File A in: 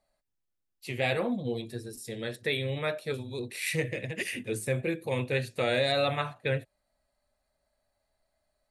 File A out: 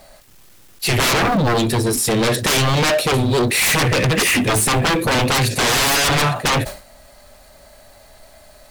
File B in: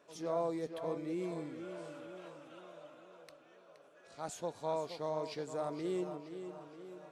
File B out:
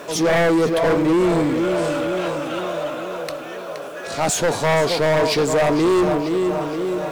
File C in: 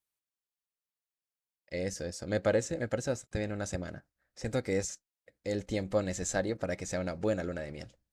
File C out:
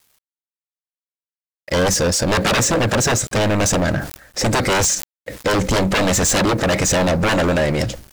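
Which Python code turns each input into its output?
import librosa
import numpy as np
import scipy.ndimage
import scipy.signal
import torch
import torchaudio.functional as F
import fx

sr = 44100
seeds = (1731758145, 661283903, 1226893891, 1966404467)

y = fx.law_mismatch(x, sr, coded='mu')
y = fx.fold_sine(y, sr, drive_db=18, ceiling_db=-13.5)
y = fx.sustainer(y, sr, db_per_s=120.0)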